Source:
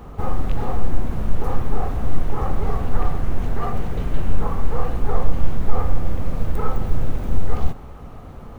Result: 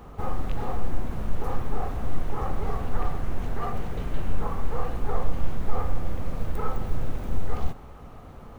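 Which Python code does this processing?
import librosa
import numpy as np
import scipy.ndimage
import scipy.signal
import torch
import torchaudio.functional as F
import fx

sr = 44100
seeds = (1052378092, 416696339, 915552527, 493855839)

y = fx.low_shelf(x, sr, hz=390.0, db=-3.5)
y = y * librosa.db_to_amplitude(-3.5)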